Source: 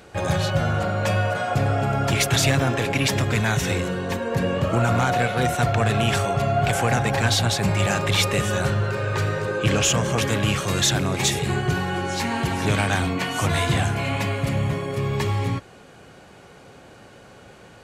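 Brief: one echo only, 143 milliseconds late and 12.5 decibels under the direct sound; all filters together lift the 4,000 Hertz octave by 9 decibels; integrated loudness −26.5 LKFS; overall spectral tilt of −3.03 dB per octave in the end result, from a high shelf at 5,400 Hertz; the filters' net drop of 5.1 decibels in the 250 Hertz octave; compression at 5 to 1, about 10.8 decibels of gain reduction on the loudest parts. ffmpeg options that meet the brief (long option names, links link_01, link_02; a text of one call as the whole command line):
ffmpeg -i in.wav -af "equalizer=frequency=250:width_type=o:gain=-8,equalizer=frequency=4000:width_type=o:gain=8,highshelf=frequency=5400:gain=8,acompressor=threshold=-21dB:ratio=5,aecho=1:1:143:0.237,volume=-2.5dB" out.wav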